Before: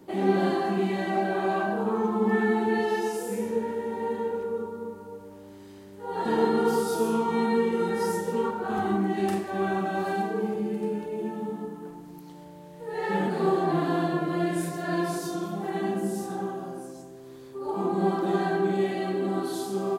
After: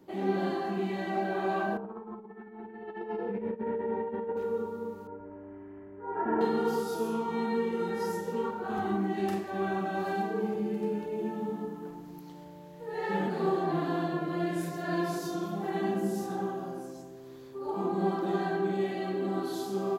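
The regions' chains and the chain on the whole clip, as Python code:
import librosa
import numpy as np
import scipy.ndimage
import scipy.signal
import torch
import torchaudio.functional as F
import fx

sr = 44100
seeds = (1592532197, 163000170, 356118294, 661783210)

y = fx.chain(x, sr, fx.over_compress(threshold_db=-31.0, ratio=-0.5),
    fx.gaussian_blur(sigma=3.6),
    fx.comb_fb(f0_hz=65.0, decay_s=0.24, harmonics='all', damping=0.0, mix_pct=50), at=(1.77, 4.37))
y = fx.chain(y, sr, fx.cheby2_lowpass(hz=3900.0, order=4, stop_db=40),
    fx.comb(ms=3.0, depth=0.72), at=(5.07, 6.41))
y = fx.peak_eq(y, sr, hz=9000.0, db=-9.5, octaves=0.33)
y = fx.rider(y, sr, range_db=3, speed_s=2.0)
y = F.gain(torch.from_numpy(y), -4.0).numpy()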